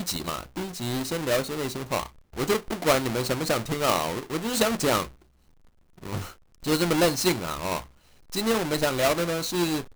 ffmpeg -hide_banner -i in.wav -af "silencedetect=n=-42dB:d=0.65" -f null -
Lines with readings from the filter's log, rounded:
silence_start: 5.08
silence_end: 5.98 | silence_duration: 0.90